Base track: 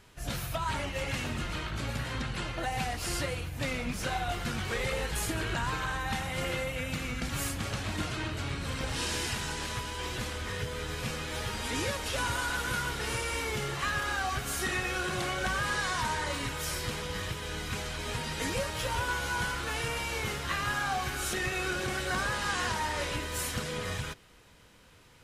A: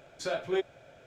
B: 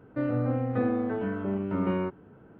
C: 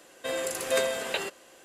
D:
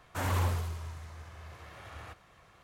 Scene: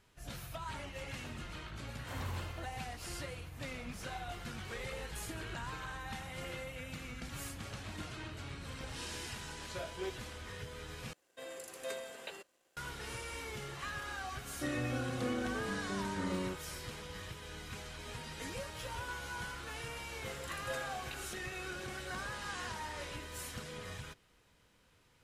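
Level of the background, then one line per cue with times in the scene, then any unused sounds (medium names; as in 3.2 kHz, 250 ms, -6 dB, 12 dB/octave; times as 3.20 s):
base track -10.5 dB
1.92 s: add D -12 dB
9.49 s: add A -11.5 dB
11.13 s: replace with C -15.5 dB + crossover distortion -58.5 dBFS
14.45 s: add B -10 dB
19.97 s: add C -14.5 dB + cancelling through-zero flanger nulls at 1.3 Hz, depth 5.3 ms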